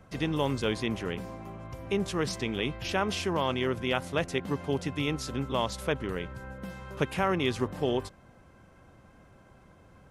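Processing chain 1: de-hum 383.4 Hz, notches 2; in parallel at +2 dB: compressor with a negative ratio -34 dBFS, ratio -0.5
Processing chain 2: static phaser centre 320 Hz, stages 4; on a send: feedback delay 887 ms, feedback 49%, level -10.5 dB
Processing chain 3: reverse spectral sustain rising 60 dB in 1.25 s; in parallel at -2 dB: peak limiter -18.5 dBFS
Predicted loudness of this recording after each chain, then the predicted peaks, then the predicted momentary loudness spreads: -27.0 LUFS, -33.5 LUFS, -23.5 LUFS; -9.5 dBFS, -16.0 dBFS, -8.5 dBFS; 19 LU, 12 LU, 9 LU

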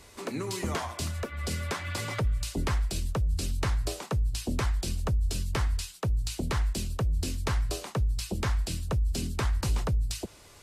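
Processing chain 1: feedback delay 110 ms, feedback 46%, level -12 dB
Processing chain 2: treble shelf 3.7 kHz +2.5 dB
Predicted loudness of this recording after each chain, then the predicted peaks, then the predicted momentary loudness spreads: -31.0 LUFS, -31.0 LUFS; -18.0 dBFS, -18.0 dBFS; 4 LU, 3 LU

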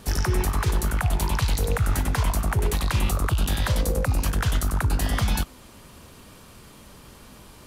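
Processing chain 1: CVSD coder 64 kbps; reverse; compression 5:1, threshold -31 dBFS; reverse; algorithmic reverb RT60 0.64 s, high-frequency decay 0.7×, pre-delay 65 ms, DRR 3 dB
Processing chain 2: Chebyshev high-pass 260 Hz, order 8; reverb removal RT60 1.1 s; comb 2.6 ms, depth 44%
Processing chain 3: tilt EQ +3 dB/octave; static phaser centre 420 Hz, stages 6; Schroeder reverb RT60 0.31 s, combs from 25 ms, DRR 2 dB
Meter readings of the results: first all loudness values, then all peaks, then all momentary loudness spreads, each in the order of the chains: -34.0 LUFS, -31.0 LUFS, -23.0 LUFS; -20.0 dBFS, -13.5 dBFS, -6.0 dBFS; 12 LU, 2 LU, 18 LU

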